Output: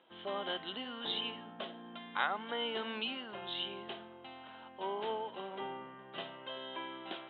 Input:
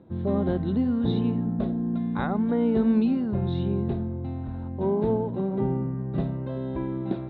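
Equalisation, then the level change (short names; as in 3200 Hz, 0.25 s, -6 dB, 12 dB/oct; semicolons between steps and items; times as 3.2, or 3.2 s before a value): HPF 1200 Hz 12 dB/oct; synth low-pass 3100 Hz, resonance Q 13; high shelf 2200 Hz -8.5 dB; +4.0 dB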